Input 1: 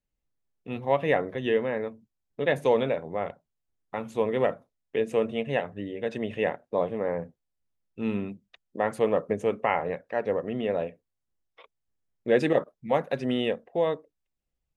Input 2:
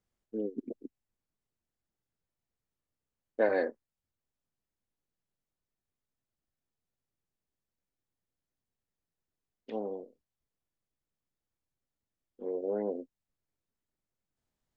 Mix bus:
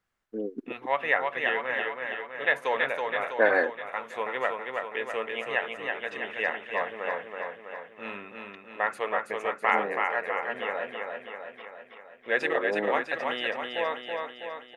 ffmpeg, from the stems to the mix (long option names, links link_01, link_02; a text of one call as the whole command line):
ffmpeg -i stem1.wav -i stem2.wav -filter_complex "[0:a]highpass=frequency=950:poles=1,volume=-5dB,asplit=2[link_01][link_02];[link_02]volume=-4dB[link_03];[1:a]volume=-0.5dB[link_04];[link_03]aecho=0:1:326|652|978|1304|1630|1956|2282|2608|2934:1|0.59|0.348|0.205|0.121|0.0715|0.0422|0.0249|0.0147[link_05];[link_01][link_04][link_05]amix=inputs=3:normalize=0,equalizer=frequency=1500:width=0.7:gain=14" out.wav